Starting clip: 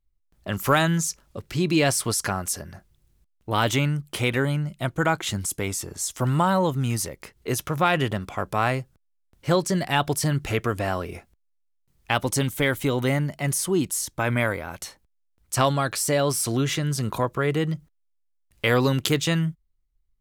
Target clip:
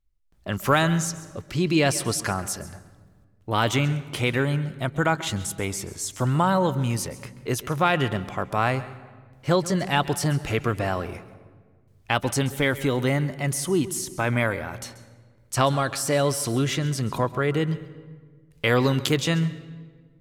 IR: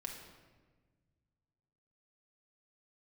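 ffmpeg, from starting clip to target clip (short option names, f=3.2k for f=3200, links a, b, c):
-filter_complex "[0:a]highshelf=f=10k:g=-7,asplit=2[a][b];[1:a]atrim=start_sample=2205,asetrate=37485,aresample=44100,adelay=134[c];[b][c]afir=irnorm=-1:irlink=0,volume=-14dB[d];[a][d]amix=inputs=2:normalize=0"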